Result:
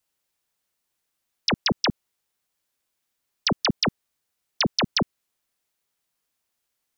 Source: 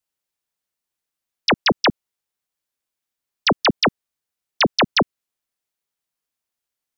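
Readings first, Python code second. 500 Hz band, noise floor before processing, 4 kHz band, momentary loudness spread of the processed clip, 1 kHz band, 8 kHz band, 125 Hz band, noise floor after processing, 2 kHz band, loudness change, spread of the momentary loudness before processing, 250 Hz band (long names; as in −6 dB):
−8.5 dB, −85 dBFS, −4.0 dB, 5 LU, −9.0 dB, can't be measured, −1.0 dB, −79 dBFS, −8.5 dB, −5.5 dB, 5 LU, −4.0 dB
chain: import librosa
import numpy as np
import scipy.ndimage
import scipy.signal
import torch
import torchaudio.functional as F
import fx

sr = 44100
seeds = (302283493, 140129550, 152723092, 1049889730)

y = fx.over_compress(x, sr, threshold_db=-19.0, ratio=-0.5)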